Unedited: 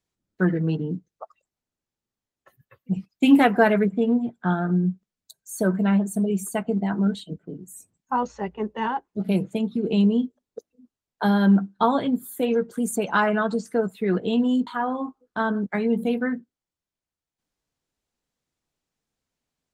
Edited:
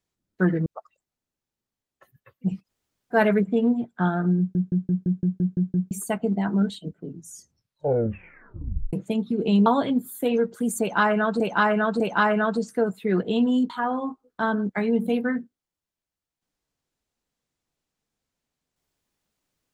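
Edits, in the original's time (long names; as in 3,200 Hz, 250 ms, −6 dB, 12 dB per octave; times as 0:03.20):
0:00.66–0:01.11: remove
0:03.11–0:03.60: fill with room tone, crossfade 0.10 s
0:04.83: stutter in place 0.17 s, 9 plays
0:07.47: tape stop 1.91 s
0:10.11–0:11.83: remove
0:12.97–0:13.57: repeat, 3 plays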